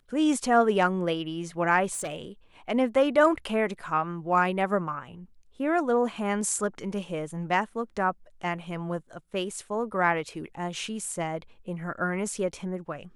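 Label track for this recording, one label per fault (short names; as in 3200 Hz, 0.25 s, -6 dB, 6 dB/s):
1.920000	2.220000	clipped -28.5 dBFS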